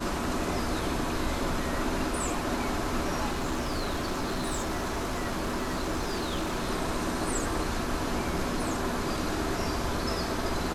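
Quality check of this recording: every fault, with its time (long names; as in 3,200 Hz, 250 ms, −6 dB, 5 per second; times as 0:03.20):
0:03.29–0:06.69: clipping −26 dBFS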